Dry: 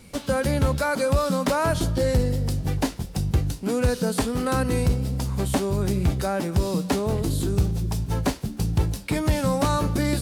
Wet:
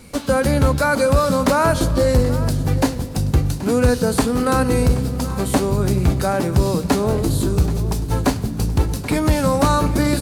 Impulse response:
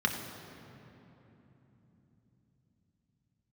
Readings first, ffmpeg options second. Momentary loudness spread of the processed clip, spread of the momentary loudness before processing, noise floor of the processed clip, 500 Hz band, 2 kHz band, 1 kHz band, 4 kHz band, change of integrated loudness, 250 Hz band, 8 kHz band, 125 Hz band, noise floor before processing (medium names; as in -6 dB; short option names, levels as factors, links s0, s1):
5 LU, 4 LU, -28 dBFS, +6.5 dB, +6.5 dB, +7.0 dB, +4.5 dB, +6.0 dB, +6.0 dB, +5.5 dB, +5.0 dB, -39 dBFS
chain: -filter_complex "[0:a]aecho=1:1:779:0.168,asplit=2[s0][s1];[1:a]atrim=start_sample=2205,lowpass=8900[s2];[s1][s2]afir=irnorm=-1:irlink=0,volume=0.0944[s3];[s0][s3]amix=inputs=2:normalize=0,volume=1.88"